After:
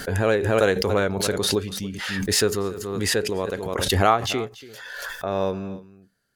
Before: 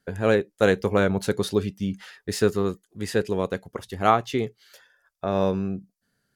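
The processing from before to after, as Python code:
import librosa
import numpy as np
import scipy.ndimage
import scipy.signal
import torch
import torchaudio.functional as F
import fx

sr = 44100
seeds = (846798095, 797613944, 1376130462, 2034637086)

p1 = fx.peak_eq(x, sr, hz=170.0, db=-6.0, octaves=1.5)
p2 = p1 + fx.echo_single(p1, sr, ms=285, db=-18.0, dry=0)
y = fx.pre_swell(p2, sr, db_per_s=31.0)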